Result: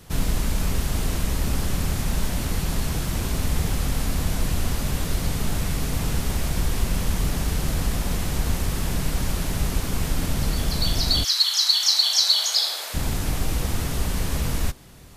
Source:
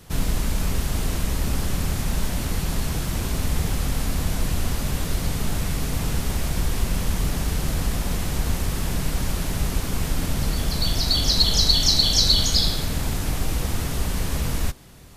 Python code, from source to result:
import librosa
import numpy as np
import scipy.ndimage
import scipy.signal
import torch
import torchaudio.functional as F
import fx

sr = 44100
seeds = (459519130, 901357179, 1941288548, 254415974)

y = fx.highpass(x, sr, hz=fx.line((11.23, 1200.0), (12.93, 540.0)), slope=24, at=(11.23, 12.93), fade=0.02)